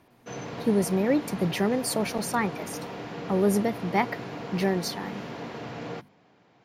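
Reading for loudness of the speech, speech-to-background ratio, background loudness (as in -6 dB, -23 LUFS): -27.0 LUFS, 10.5 dB, -37.5 LUFS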